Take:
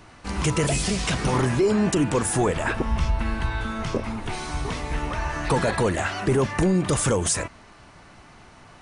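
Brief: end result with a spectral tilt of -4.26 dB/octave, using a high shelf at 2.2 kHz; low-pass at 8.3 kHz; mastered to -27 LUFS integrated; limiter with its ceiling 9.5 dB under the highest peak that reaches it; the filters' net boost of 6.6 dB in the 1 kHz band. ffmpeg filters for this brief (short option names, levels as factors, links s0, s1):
-af "lowpass=8300,equalizer=f=1000:t=o:g=7,highshelf=f=2200:g=4.5,volume=0.944,alimiter=limit=0.126:level=0:latency=1"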